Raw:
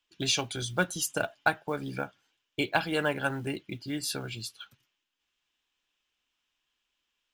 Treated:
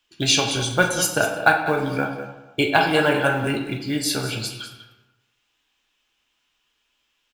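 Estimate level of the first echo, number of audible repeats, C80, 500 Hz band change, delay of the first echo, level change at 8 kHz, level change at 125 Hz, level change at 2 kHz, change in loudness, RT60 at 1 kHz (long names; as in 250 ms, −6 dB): −12.5 dB, 1, 7.0 dB, +10.5 dB, 197 ms, +9.5 dB, +10.0 dB, +10.5 dB, +10.5 dB, 1.1 s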